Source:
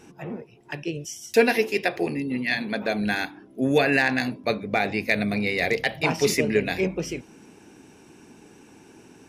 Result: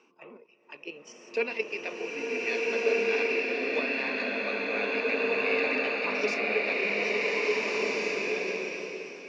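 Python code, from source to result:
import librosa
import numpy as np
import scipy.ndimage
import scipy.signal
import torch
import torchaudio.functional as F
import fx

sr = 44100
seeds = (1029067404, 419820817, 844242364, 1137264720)

y = fx.level_steps(x, sr, step_db=9)
y = fx.cabinet(y, sr, low_hz=290.0, low_slope=24, high_hz=5000.0, hz=(320.0, 760.0, 1100.0, 1700.0, 2600.0, 3600.0), db=(-7, -9, 8, -10, 8, -8))
y = fx.rev_bloom(y, sr, seeds[0], attack_ms=1740, drr_db=-7.0)
y = F.gain(torch.from_numpy(y), -5.5).numpy()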